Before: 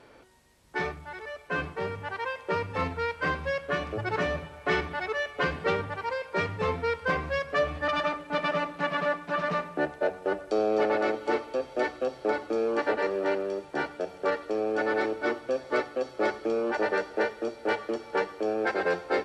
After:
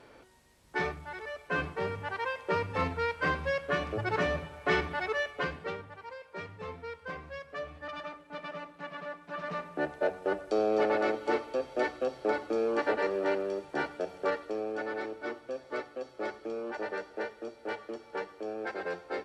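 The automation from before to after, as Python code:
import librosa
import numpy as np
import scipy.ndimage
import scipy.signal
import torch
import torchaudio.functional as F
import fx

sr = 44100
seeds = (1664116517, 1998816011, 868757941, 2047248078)

y = fx.gain(x, sr, db=fx.line((5.2, -1.0), (5.83, -13.0), (9.11, -13.0), (9.97, -2.0), (14.19, -2.0), (14.93, -9.0)))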